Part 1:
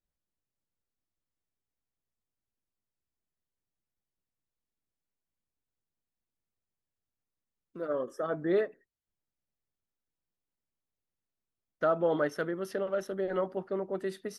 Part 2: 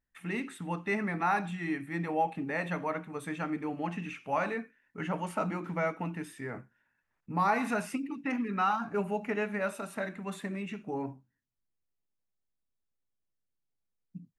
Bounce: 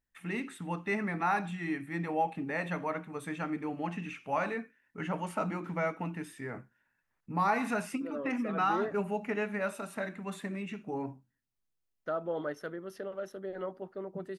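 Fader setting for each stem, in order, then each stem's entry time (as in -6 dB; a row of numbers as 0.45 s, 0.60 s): -7.0 dB, -1.0 dB; 0.25 s, 0.00 s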